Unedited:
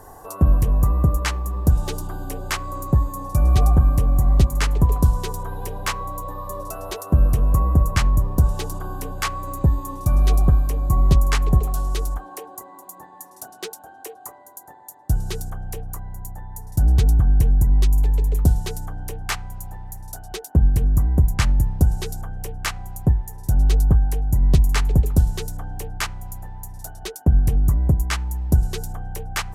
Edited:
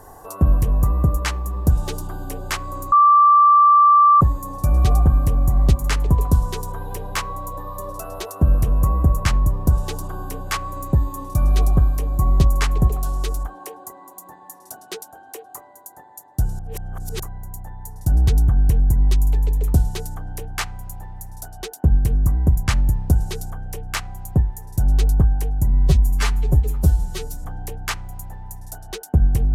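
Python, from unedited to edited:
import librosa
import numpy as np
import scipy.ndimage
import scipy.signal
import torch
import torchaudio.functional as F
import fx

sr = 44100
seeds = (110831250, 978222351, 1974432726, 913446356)

y = fx.edit(x, sr, fx.insert_tone(at_s=2.92, length_s=1.29, hz=1170.0, db=-8.5),
    fx.reverse_span(start_s=15.3, length_s=0.61),
    fx.stretch_span(start_s=24.4, length_s=1.17, factor=1.5), tone=tone)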